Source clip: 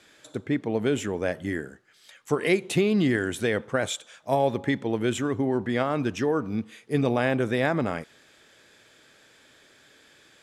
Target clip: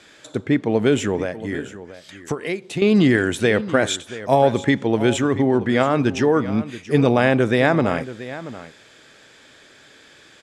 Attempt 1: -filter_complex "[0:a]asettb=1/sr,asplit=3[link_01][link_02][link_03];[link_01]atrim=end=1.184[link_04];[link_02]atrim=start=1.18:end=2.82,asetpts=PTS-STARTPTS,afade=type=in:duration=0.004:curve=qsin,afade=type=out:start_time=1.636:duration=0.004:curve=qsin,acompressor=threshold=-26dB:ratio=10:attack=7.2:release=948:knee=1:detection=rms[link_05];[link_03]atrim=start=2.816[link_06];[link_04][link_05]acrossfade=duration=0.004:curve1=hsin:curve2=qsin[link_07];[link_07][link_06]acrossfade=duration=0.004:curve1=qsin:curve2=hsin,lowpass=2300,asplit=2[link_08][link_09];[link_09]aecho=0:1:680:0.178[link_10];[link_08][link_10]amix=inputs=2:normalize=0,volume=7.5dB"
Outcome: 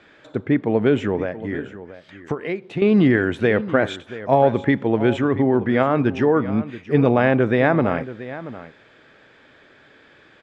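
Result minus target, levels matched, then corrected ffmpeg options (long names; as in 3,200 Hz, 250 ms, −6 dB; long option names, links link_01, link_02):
8,000 Hz band −19.5 dB
-filter_complex "[0:a]asettb=1/sr,asplit=3[link_01][link_02][link_03];[link_01]atrim=end=1.184[link_04];[link_02]atrim=start=1.18:end=2.82,asetpts=PTS-STARTPTS,afade=type=in:duration=0.004:curve=qsin,afade=type=out:start_time=1.636:duration=0.004:curve=qsin,acompressor=threshold=-26dB:ratio=10:attack=7.2:release=948:knee=1:detection=rms[link_05];[link_03]atrim=start=2.816[link_06];[link_04][link_05]acrossfade=duration=0.004:curve1=hsin:curve2=qsin[link_07];[link_07][link_06]acrossfade=duration=0.004:curve1=qsin:curve2=hsin,lowpass=8900,asplit=2[link_08][link_09];[link_09]aecho=0:1:680:0.178[link_10];[link_08][link_10]amix=inputs=2:normalize=0,volume=7.5dB"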